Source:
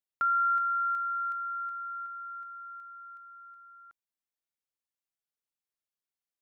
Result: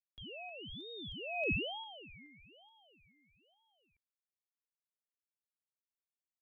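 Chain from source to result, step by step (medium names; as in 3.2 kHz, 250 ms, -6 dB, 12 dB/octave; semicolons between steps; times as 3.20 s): Doppler pass-by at 1.51 s, 52 m/s, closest 2.9 m; ring modulator with a swept carrier 1.5 kHz, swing 40%, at 1.1 Hz; trim +9.5 dB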